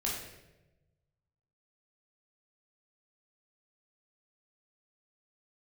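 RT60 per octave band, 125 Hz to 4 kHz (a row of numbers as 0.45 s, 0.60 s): 1.8 s, 1.2 s, 1.2 s, 0.85 s, 0.90 s, 0.75 s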